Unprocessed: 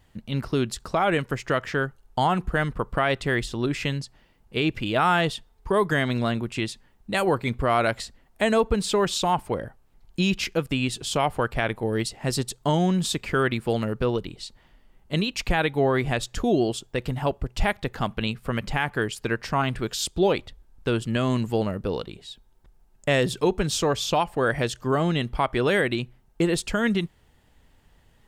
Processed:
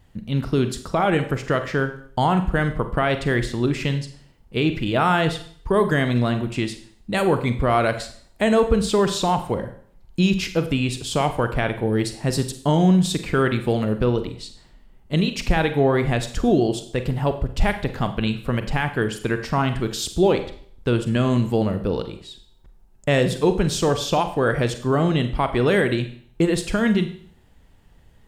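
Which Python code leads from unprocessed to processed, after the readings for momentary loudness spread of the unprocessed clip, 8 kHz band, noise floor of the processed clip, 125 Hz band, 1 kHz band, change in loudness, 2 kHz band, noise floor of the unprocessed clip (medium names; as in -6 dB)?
8 LU, +0.5 dB, -53 dBFS, +5.5 dB, +2.0 dB, +3.5 dB, +1.0 dB, -59 dBFS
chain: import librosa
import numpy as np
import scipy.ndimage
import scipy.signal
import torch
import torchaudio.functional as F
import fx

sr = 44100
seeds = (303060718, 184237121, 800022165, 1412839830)

y = fx.low_shelf(x, sr, hz=480.0, db=5.5)
y = fx.rev_schroeder(y, sr, rt60_s=0.55, comb_ms=33, drr_db=8.5)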